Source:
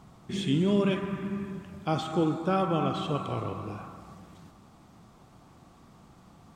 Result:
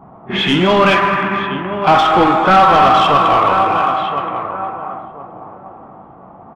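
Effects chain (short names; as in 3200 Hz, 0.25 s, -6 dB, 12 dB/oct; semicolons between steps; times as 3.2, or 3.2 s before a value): LPF 8400 Hz; band shelf 1500 Hz +11 dB 2.7 oct; on a send: feedback echo 1.024 s, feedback 31%, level -13.5 dB; on the sum: overdrive pedal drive 20 dB, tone 1400 Hz, clips at -6.5 dBFS; doubler 22 ms -12.5 dB; low-pass opened by the level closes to 310 Hz, open at -18 dBFS; in parallel at -8 dB: hard clip -18.5 dBFS, distortion -9 dB; on the sum: pre-echo 31 ms -15.5 dB; gain +4.5 dB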